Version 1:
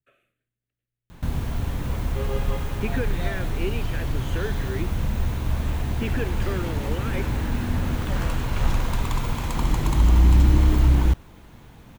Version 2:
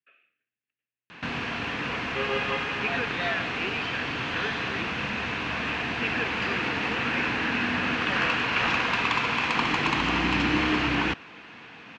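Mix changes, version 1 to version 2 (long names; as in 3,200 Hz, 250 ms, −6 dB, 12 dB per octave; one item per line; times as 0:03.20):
background +8.5 dB
master: add loudspeaker in its box 370–4,700 Hz, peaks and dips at 370 Hz −6 dB, 580 Hz −9 dB, 870 Hz −5 dB, 1,700 Hz +4 dB, 2,600 Hz +9 dB, 3,700 Hz −4 dB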